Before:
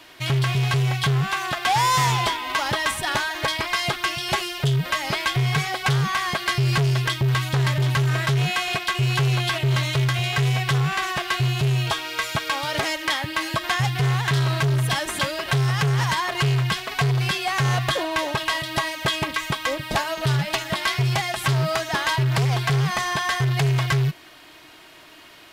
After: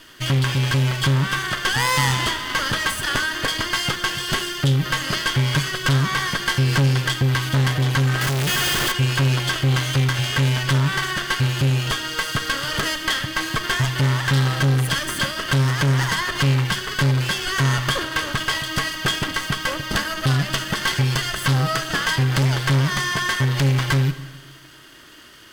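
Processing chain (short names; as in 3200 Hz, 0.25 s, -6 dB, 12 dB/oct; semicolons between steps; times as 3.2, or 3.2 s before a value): minimum comb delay 0.64 ms; Schroeder reverb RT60 1.3 s, combs from 29 ms, DRR 11.5 dB; 8.21–8.92 Schmitt trigger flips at -40 dBFS; gain +2.5 dB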